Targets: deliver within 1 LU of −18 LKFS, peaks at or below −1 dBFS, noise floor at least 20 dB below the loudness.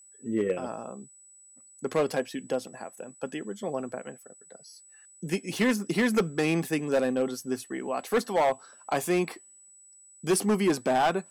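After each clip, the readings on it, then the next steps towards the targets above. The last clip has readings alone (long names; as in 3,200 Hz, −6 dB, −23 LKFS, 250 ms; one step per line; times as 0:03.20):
share of clipped samples 1.1%; peaks flattened at −18.5 dBFS; interfering tone 7,900 Hz; level of the tone −52 dBFS; integrated loudness −28.5 LKFS; sample peak −18.5 dBFS; target loudness −18.0 LKFS
→ clipped peaks rebuilt −18.5 dBFS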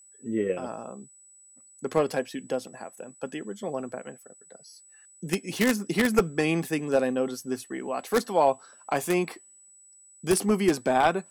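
share of clipped samples 0.0%; interfering tone 7,900 Hz; level of the tone −52 dBFS
→ notch filter 7,900 Hz, Q 30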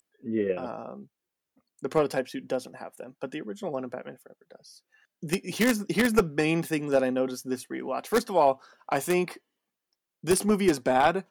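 interfering tone none found; integrated loudness −27.5 LKFS; sample peak −9.0 dBFS; target loudness −18.0 LKFS
→ level +9.5 dB
brickwall limiter −1 dBFS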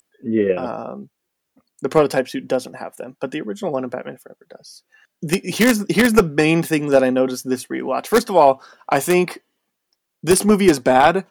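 integrated loudness −18.0 LKFS; sample peak −1.0 dBFS; background noise floor −77 dBFS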